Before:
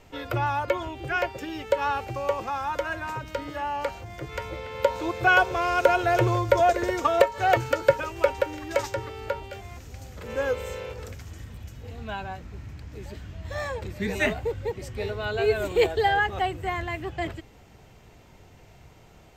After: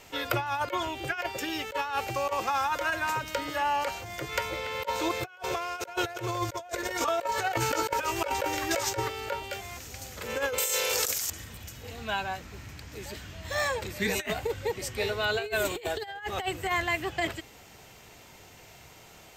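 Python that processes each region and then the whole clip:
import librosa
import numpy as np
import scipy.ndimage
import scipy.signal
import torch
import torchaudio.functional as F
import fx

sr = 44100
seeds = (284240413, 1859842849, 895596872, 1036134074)

y = fx.chain(x, sr, fx.doubler(ms=18.0, db=-8),
    fx.over_compress(threshold_db=-25.0, ratio=-0.5), at=(6.71, 9.08))
y = fx.chain(y, sr, fx.bass_treble(bass_db=-14, treble_db=14),
    fx.env_flatten(amount_pct=100), at=(10.58, 11.3))
y = fx.tilt_eq(y, sr, slope=2.5)
y = fx.over_compress(y, sr, threshold_db=-29.0, ratio=-0.5)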